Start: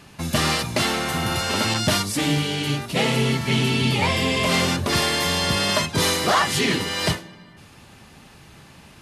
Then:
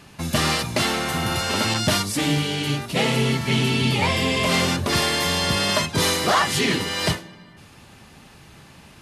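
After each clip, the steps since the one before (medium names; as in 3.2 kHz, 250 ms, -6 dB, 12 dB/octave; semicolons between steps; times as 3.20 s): no audible change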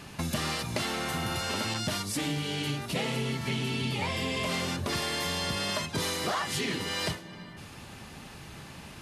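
compression 4:1, threshold -32 dBFS, peak gain reduction 14.5 dB; trim +1.5 dB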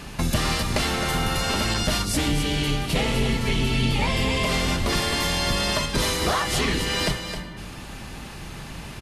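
octave divider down 2 oct, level 0 dB; on a send: delay 264 ms -8.5 dB; on the sum: trim +6.5 dB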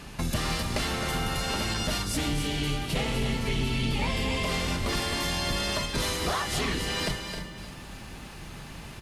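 in parallel at -9 dB: one-sided clip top -22 dBFS; on the sum: bit-crushed delay 307 ms, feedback 35%, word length 8-bit, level -11.5 dB; trim -8 dB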